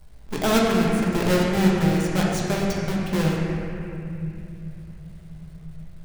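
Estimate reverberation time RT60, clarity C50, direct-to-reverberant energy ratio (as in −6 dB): 2.7 s, −1.0 dB, −4.0 dB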